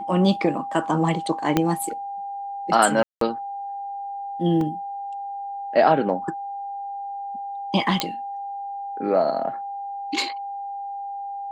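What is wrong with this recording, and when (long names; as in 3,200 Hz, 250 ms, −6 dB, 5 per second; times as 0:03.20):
whistle 800 Hz −29 dBFS
0:01.57: click −5 dBFS
0:03.03–0:03.21: drop-out 183 ms
0:04.61: drop-out 2.2 ms
0:08.00: click −5 dBFS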